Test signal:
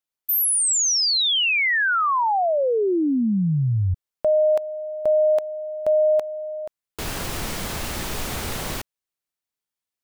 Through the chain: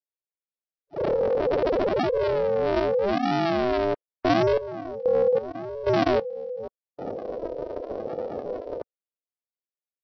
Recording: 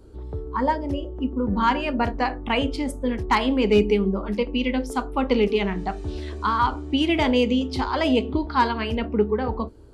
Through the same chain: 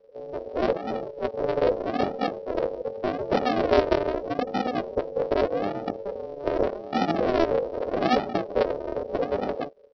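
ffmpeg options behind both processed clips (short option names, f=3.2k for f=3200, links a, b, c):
-af "aresample=11025,acrusher=samples=29:mix=1:aa=0.000001:lfo=1:lforange=17.4:lforate=0.82,aresample=44100,aeval=exprs='val(0)*sin(2*PI*500*n/s)':c=same,afftdn=nr=14:nf=-38"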